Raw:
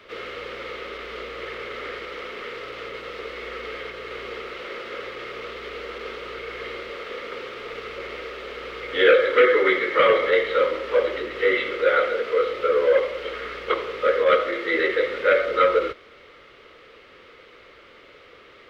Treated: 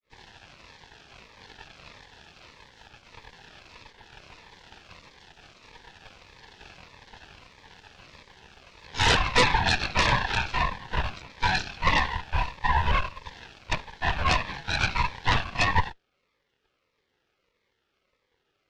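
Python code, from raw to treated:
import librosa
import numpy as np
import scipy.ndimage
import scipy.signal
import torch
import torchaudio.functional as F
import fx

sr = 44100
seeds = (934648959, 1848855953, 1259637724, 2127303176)

y = fx.granulator(x, sr, seeds[0], grain_ms=154.0, per_s=20.0, spray_ms=19.0, spread_st=0)
y = fx.cheby_harmonics(y, sr, harmonics=(3, 5, 6), levels_db=(-8, -32, -8), full_scale_db=-6.5)
y = fx.notch_cascade(y, sr, direction='falling', hz=1.6)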